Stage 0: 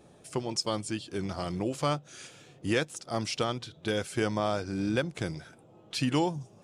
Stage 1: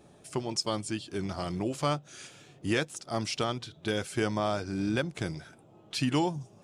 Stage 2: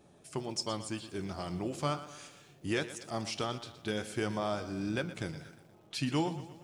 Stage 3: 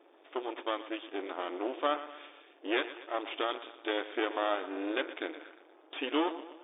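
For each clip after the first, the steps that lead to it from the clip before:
band-stop 500 Hz, Q 12
flange 1.4 Hz, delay 9.8 ms, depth 4.7 ms, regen +80%; bit-crushed delay 119 ms, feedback 55%, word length 10-bit, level -14 dB
half-wave rectifier; brick-wall FIR band-pass 270–3700 Hz; trim +7 dB

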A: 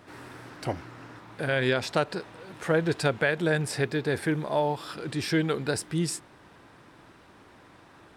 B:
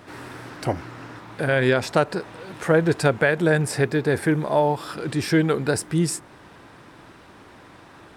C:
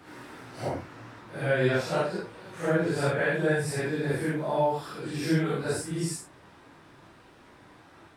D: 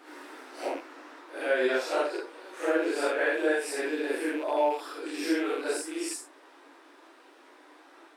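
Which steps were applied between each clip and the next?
dynamic bell 3.6 kHz, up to -6 dB, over -47 dBFS, Q 0.99; trim +6.5 dB
phase randomisation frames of 200 ms; trim -6.5 dB
rattle on loud lows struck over -37 dBFS, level -34 dBFS; brick-wall FIR high-pass 260 Hz; endings held to a fixed fall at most 200 dB/s

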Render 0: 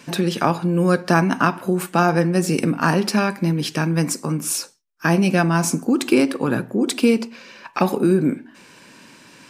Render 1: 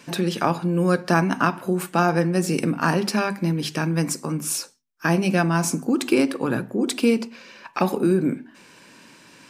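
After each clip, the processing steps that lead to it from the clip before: hum notches 50/100/150/200/250 Hz; trim -2.5 dB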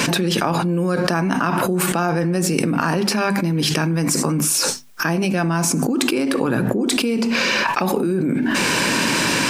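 level flattener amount 100%; trim -4.5 dB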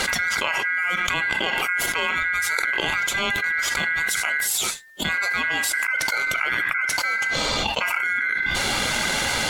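coarse spectral quantiser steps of 15 dB; ring modulator 1.8 kHz; trim -1 dB

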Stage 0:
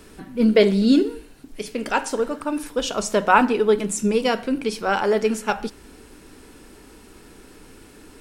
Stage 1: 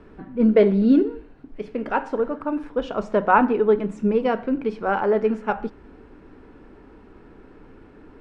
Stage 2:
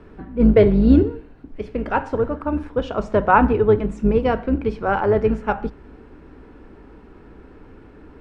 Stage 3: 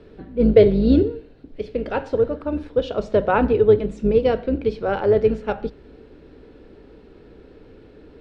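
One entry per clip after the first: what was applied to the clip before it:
low-pass 1.5 kHz 12 dB/octave
octave divider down 2 oct, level -3 dB; trim +2 dB
graphic EQ 125/500/1000/4000 Hz +3/+9/-6/+12 dB; trim -5 dB

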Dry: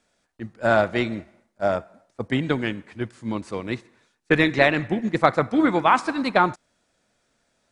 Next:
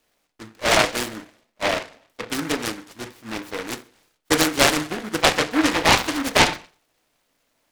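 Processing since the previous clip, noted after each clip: peaking EQ 88 Hz -15 dB 2.9 oct; FDN reverb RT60 0.38 s, low-frequency decay 0.85×, high-frequency decay 0.3×, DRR 5.5 dB; delay time shaken by noise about 1.3 kHz, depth 0.23 ms; trim +1 dB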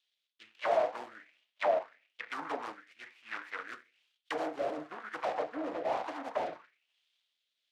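hard clipper -19 dBFS, distortion -6 dB; auto-wah 670–3500 Hz, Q 4, down, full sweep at -21 dBFS; rotary cabinet horn 1.1 Hz; trim +2 dB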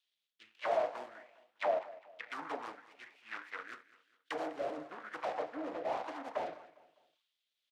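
feedback delay 202 ms, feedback 40%, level -18.5 dB; trim -3.5 dB

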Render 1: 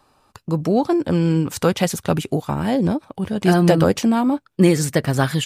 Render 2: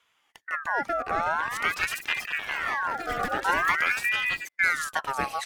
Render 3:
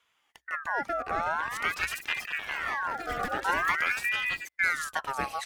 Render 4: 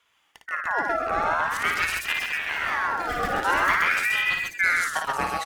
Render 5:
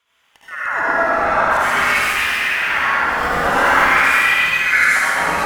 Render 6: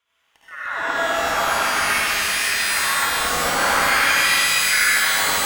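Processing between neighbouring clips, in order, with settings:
time-frequency box 0.95–1.61 s, 880–2000 Hz +7 dB; ever faster or slower copies 631 ms, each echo +6 st, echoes 3, each echo -6 dB; ring modulator with a swept carrier 1.6 kHz, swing 40%, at 0.47 Hz; trim -7.5 dB
peaking EQ 64 Hz +7.5 dB 0.23 oct; trim -3 dB
loudspeakers at several distances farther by 19 m -5 dB, 45 m -4 dB; trim +3.5 dB
reverberation RT60 2.2 s, pre-delay 68 ms, DRR -10 dB; trim -1.5 dB
pitch-shifted reverb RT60 3 s, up +12 st, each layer -2 dB, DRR 3 dB; trim -7 dB

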